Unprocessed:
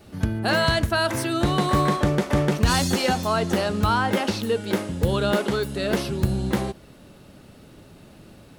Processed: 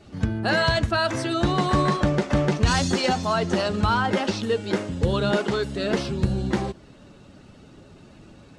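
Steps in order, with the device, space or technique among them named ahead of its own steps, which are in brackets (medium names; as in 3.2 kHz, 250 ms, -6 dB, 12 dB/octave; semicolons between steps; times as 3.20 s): clip after many re-uploads (low-pass 7.9 kHz 24 dB/octave; coarse spectral quantiser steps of 15 dB)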